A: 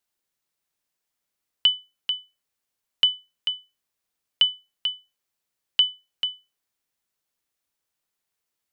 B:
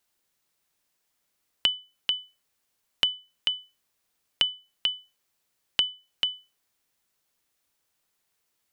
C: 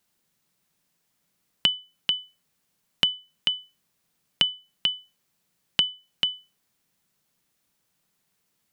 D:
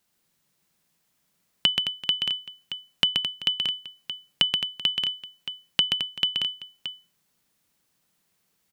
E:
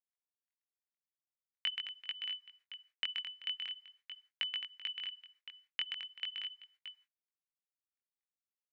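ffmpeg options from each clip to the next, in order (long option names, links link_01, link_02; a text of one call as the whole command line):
ffmpeg -i in.wav -af "acompressor=threshold=-31dB:ratio=3,volume=6dB" out.wav
ffmpeg -i in.wav -af "equalizer=frequency=170:width=1.3:gain=12,volume=2dB" out.wav
ffmpeg -i in.wav -af "aecho=1:1:128|216|385|625:0.562|0.316|0.119|0.316" out.wav
ffmpeg -i in.wav -af "acrusher=bits=9:mix=0:aa=0.000001,flanger=delay=19:depth=4.4:speed=0.44,bandpass=frequency=2000:width_type=q:width=3.1:csg=0,volume=-3dB" out.wav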